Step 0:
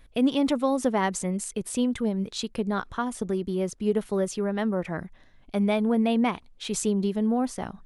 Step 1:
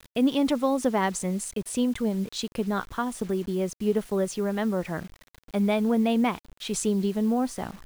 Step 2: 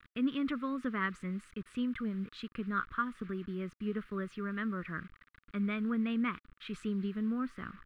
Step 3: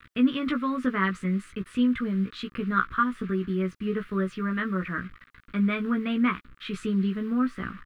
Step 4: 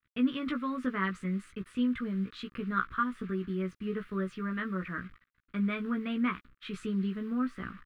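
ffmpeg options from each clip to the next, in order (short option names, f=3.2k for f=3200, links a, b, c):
-af "acrusher=bits=7:mix=0:aa=0.000001"
-af "firequalizer=gain_entry='entry(260,0);entry(810,-21);entry(1200,10);entry(6100,-21)':delay=0.05:min_phase=1,volume=-8.5dB"
-filter_complex "[0:a]asplit=2[a][b];[b]adelay=16,volume=-4.5dB[c];[a][c]amix=inputs=2:normalize=0,volume=7.5dB"
-af "agate=range=-33dB:threshold=-40dB:ratio=3:detection=peak,volume=-6dB"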